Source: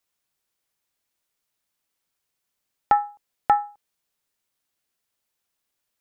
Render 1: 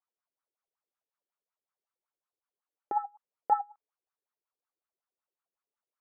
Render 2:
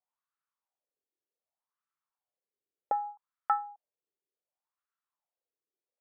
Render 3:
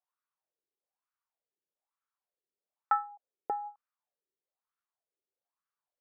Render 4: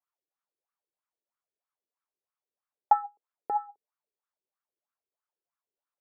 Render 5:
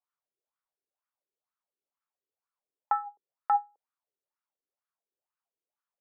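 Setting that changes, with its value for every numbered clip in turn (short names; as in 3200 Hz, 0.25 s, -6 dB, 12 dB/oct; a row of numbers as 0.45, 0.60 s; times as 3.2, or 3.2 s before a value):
wah, rate: 5.4, 0.66, 1.1, 3.1, 2.1 Hz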